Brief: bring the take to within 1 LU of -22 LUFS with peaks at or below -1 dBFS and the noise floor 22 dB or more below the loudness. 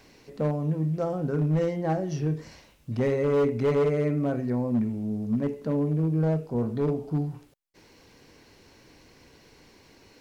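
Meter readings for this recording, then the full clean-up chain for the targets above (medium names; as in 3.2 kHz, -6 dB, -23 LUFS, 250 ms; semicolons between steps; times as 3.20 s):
clipped samples 1.6%; clipping level -19.0 dBFS; loudness -27.0 LUFS; peak level -19.0 dBFS; loudness target -22.0 LUFS
-> clip repair -19 dBFS; trim +5 dB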